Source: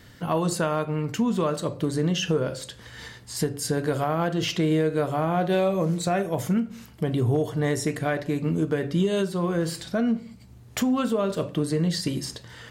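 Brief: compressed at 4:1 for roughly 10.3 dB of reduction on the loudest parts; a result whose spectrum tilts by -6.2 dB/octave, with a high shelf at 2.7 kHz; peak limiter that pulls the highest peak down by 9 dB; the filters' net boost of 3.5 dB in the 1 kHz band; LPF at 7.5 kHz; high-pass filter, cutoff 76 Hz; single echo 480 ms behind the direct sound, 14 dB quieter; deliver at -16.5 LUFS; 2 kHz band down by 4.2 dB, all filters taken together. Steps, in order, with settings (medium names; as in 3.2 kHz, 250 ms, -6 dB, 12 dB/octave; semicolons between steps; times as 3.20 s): high-pass 76 Hz; low-pass 7.5 kHz; peaking EQ 1 kHz +7.5 dB; peaking EQ 2 kHz -6 dB; treble shelf 2.7 kHz -8 dB; compression 4:1, threshold -31 dBFS; peak limiter -27.5 dBFS; delay 480 ms -14 dB; trim +20.5 dB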